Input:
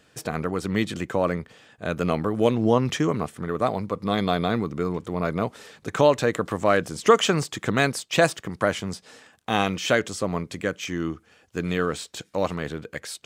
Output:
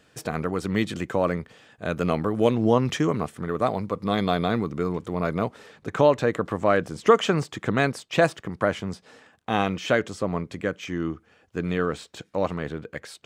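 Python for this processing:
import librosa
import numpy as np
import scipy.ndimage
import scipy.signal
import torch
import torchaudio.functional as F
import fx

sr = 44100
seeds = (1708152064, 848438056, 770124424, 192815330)

y = fx.high_shelf(x, sr, hz=3700.0, db=fx.steps((0.0, -2.5), (5.47, -11.0)))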